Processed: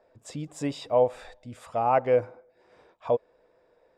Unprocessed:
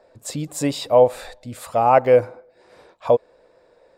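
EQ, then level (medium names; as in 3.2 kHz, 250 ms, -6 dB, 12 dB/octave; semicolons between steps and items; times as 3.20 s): distance through air 66 m; band-stop 550 Hz, Q 16; band-stop 4.2 kHz, Q 6.7; -7.5 dB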